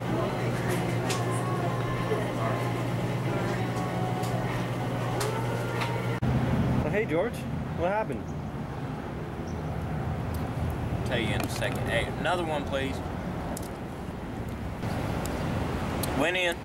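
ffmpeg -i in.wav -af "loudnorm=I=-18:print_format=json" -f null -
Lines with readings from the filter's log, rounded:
"input_i" : "-30.0",
"input_tp" : "-12.9",
"input_lra" : "3.4",
"input_thresh" : "-40.0",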